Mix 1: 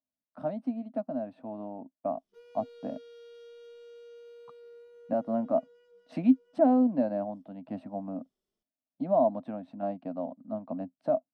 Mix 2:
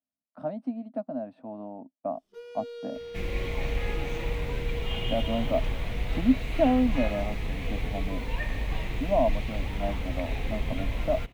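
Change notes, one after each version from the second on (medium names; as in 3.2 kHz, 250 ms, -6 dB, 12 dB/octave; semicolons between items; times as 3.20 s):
first sound +10.5 dB; second sound: unmuted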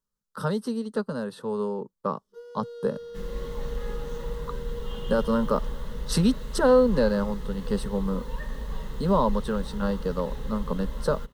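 speech: remove two resonant band-passes 410 Hz, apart 1.3 oct; master: add static phaser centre 470 Hz, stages 8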